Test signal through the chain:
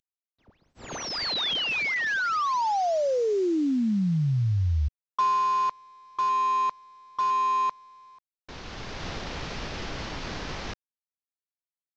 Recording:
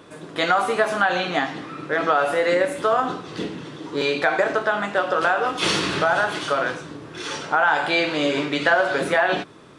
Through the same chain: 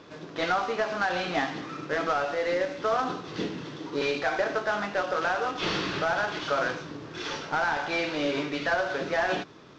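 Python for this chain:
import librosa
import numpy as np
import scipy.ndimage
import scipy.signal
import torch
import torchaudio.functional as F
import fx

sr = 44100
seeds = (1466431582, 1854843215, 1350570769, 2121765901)

y = fx.cvsd(x, sr, bps=32000)
y = fx.rider(y, sr, range_db=3, speed_s=0.5)
y = y * librosa.db_to_amplitude(-5.5)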